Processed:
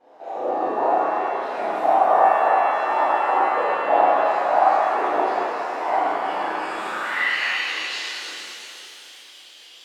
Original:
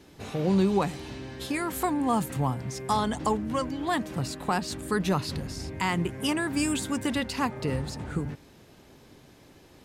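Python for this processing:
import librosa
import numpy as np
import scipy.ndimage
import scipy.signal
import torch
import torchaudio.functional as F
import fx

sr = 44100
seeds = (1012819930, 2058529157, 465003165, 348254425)

y = scipy.signal.sosfilt(scipy.signal.butter(16, 320.0, 'highpass', fs=sr, output='sos'), x)
y = fx.rider(y, sr, range_db=5, speed_s=0.5)
y = fx.filter_sweep_bandpass(y, sr, from_hz=720.0, to_hz=3200.0, start_s=6.26, end_s=7.7, q=5.4)
y = fx.whisperise(y, sr, seeds[0])
y = fx.doubler(y, sr, ms=35.0, db=-2)
y = fx.rev_shimmer(y, sr, seeds[1], rt60_s=3.0, semitones=7, shimmer_db=-8, drr_db=-10.0)
y = y * 10.0 ** (6.0 / 20.0)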